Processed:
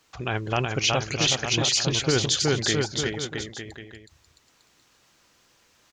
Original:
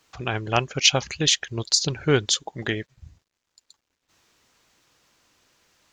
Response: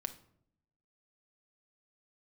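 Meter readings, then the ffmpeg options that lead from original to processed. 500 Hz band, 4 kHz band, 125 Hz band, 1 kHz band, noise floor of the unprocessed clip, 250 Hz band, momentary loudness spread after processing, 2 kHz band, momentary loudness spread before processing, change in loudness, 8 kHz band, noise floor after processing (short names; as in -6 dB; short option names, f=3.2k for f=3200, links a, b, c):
0.0 dB, -1.0 dB, +1.0 dB, -0.5 dB, -80 dBFS, +1.0 dB, 13 LU, 0.0 dB, 10 LU, -1.5 dB, -1.0 dB, -63 dBFS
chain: -filter_complex "[0:a]asplit=2[a][b];[b]aecho=0:1:370|666|902.8|1092|1244:0.631|0.398|0.251|0.158|0.1[c];[a][c]amix=inputs=2:normalize=0,alimiter=limit=-12.5dB:level=0:latency=1:release=13"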